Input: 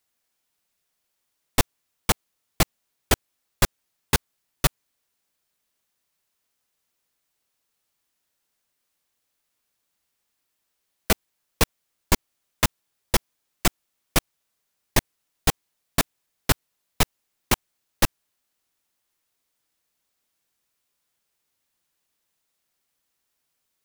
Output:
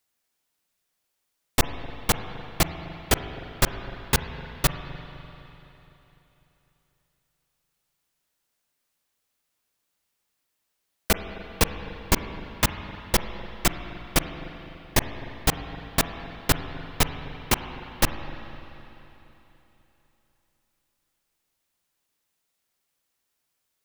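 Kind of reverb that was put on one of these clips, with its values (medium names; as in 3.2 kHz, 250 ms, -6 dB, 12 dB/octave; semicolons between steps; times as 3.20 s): spring tank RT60 3.4 s, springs 36/42/49 ms, chirp 70 ms, DRR 8 dB; trim -1 dB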